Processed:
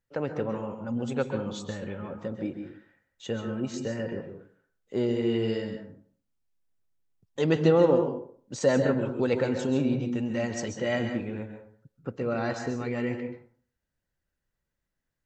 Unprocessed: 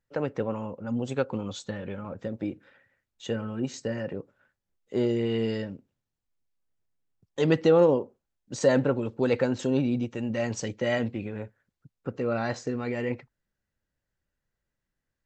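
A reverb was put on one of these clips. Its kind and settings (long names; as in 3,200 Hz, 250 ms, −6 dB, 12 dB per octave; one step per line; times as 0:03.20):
dense smooth reverb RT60 0.5 s, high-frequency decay 0.55×, pre-delay 120 ms, DRR 6 dB
level −1.5 dB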